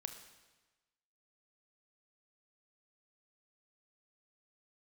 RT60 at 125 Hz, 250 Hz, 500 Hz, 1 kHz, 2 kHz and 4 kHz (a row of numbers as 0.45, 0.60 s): 1.3, 1.2, 1.2, 1.2, 1.2, 1.1 s